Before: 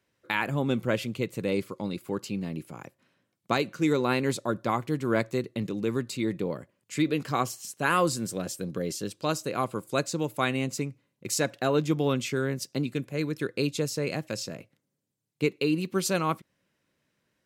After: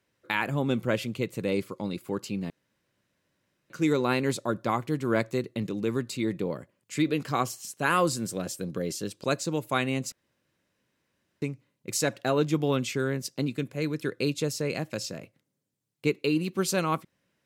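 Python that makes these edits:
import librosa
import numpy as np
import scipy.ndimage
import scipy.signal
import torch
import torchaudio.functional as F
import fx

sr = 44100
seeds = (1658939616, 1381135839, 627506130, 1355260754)

y = fx.edit(x, sr, fx.room_tone_fill(start_s=2.5, length_s=1.2),
    fx.cut(start_s=9.24, length_s=0.67),
    fx.insert_room_tone(at_s=10.79, length_s=1.3), tone=tone)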